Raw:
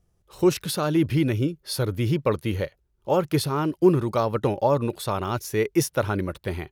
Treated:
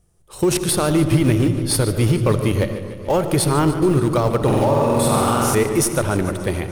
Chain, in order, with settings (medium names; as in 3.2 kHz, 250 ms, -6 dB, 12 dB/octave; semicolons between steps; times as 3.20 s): peaking EQ 9 kHz +12.5 dB 0.46 oct; 4.37–5.55 s: flutter echo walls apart 8 m, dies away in 1.5 s; in parallel at -12 dB: Schmitt trigger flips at -21.5 dBFS; on the sum: peak limiter -15.5 dBFS, peak gain reduction 10 dB; on a send at -11.5 dB: bass shelf 330 Hz +9.5 dB + reverberation RT60 1.4 s, pre-delay 40 ms; on the sum: modulated delay 146 ms, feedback 68%, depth 92 cents, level -14 dB; trim +6 dB